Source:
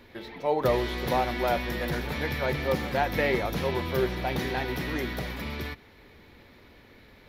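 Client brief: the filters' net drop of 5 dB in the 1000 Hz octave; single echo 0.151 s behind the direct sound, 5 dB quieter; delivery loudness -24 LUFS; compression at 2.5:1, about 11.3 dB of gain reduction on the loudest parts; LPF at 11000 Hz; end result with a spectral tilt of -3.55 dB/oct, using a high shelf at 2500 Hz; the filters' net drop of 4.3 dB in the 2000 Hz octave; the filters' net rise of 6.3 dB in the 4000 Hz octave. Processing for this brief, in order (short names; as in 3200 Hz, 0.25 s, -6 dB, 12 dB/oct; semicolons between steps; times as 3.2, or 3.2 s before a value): LPF 11000 Hz; bell 1000 Hz -7 dB; bell 2000 Hz -6.5 dB; high shelf 2500 Hz +3 dB; bell 4000 Hz +7.5 dB; compressor 2.5:1, threshold -39 dBFS; echo 0.151 s -5 dB; gain +13 dB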